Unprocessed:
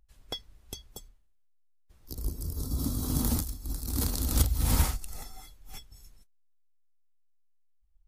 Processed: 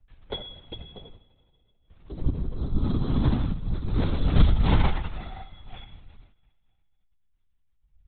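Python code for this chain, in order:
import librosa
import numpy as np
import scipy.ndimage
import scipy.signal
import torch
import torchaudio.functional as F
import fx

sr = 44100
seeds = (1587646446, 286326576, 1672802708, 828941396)

y = fx.rev_double_slope(x, sr, seeds[0], early_s=0.64, late_s=2.2, knee_db=-17, drr_db=2.0)
y = fx.lpc_vocoder(y, sr, seeds[1], excitation='whisper', order=16)
y = y * librosa.db_to_amplitude(3.0)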